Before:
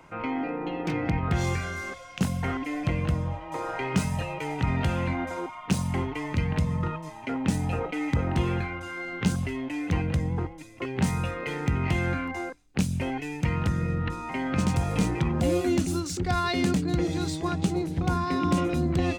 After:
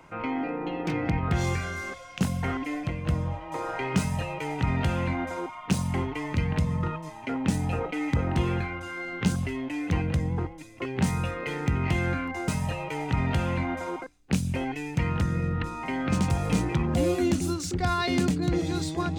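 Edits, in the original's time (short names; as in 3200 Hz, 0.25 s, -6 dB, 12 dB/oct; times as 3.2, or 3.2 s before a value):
2.74–3.06 fade out quadratic, to -6.5 dB
3.98–5.52 copy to 12.48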